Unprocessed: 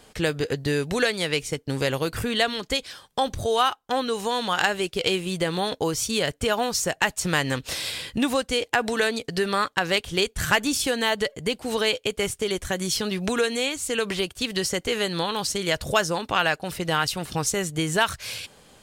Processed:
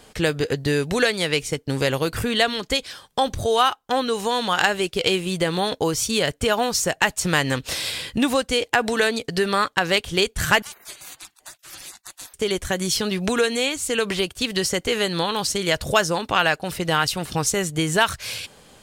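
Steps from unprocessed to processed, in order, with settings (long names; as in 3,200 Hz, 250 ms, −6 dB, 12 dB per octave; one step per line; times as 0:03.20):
0:10.62–0:12.34: gate on every frequency bin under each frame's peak −30 dB weak
level +3 dB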